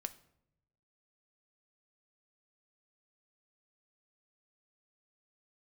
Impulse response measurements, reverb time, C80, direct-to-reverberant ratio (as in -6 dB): 0.80 s, 20.0 dB, 9.5 dB